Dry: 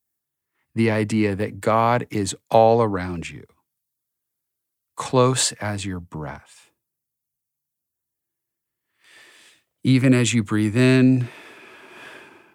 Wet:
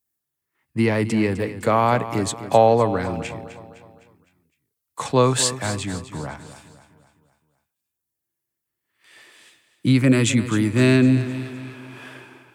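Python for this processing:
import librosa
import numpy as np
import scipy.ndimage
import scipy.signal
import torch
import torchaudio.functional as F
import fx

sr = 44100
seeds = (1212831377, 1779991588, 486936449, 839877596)

y = fx.echo_feedback(x, sr, ms=255, feedback_pct=48, wet_db=-13.0)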